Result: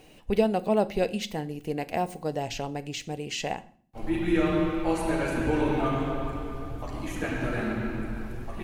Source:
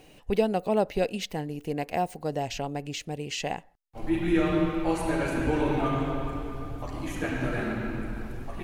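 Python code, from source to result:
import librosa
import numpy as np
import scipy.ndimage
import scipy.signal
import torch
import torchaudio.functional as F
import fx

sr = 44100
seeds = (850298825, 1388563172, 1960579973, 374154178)

y = fx.rev_fdn(x, sr, rt60_s=0.48, lf_ratio=1.6, hf_ratio=0.95, size_ms=27.0, drr_db=12.5)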